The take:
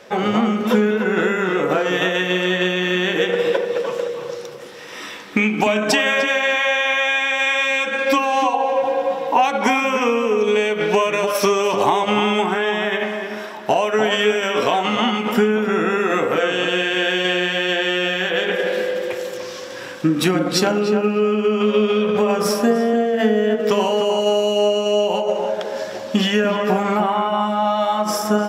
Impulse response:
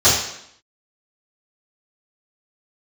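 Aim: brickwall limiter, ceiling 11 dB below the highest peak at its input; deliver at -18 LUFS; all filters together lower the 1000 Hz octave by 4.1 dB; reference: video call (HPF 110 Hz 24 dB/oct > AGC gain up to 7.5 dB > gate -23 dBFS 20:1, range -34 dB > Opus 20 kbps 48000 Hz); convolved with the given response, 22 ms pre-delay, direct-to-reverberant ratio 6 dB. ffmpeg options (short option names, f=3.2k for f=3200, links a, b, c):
-filter_complex "[0:a]equalizer=f=1k:t=o:g=-5.5,alimiter=limit=-16dB:level=0:latency=1,asplit=2[a][b];[1:a]atrim=start_sample=2205,adelay=22[c];[b][c]afir=irnorm=-1:irlink=0,volume=-29dB[d];[a][d]amix=inputs=2:normalize=0,highpass=f=110:w=0.5412,highpass=f=110:w=1.3066,dynaudnorm=m=7.5dB,agate=range=-34dB:threshold=-23dB:ratio=20,volume=0.5dB" -ar 48000 -c:a libopus -b:a 20k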